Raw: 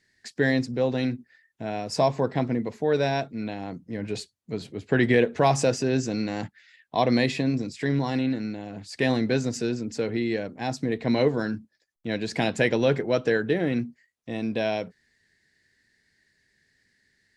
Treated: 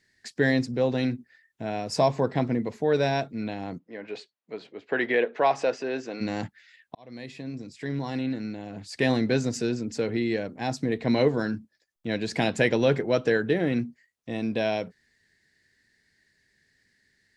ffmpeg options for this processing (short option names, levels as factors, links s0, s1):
-filter_complex "[0:a]asplit=3[s0][s1][s2];[s0]afade=t=out:st=3.78:d=0.02[s3];[s1]highpass=450,lowpass=3000,afade=t=in:st=3.78:d=0.02,afade=t=out:st=6.2:d=0.02[s4];[s2]afade=t=in:st=6.2:d=0.02[s5];[s3][s4][s5]amix=inputs=3:normalize=0,asplit=2[s6][s7];[s6]atrim=end=6.95,asetpts=PTS-STARTPTS,afade=t=out:st=6.946:d=0.004:c=hsin[s8];[s7]atrim=start=6.95,asetpts=PTS-STARTPTS,afade=t=in:d=1.97[s9];[s8][s9]concat=n=2:v=0:a=1"